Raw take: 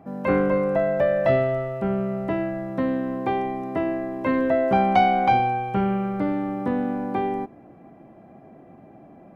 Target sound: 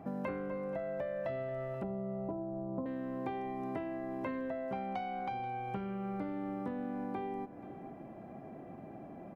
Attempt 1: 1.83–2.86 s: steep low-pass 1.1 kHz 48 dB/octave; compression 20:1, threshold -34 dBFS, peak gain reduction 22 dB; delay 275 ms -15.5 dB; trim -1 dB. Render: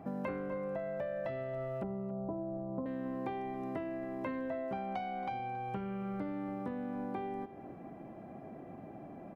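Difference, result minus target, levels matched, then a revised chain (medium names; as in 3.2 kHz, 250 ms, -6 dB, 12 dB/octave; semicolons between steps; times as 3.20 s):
echo 207 ms early
1.83–2.86 s: steep low-pass 1.1 kHz 48 dB/octave; compression 20:1, threshold -34 dBFS, peak gain reduction 22 dB; delay 482 ms -15.5 dB; trim -1 dB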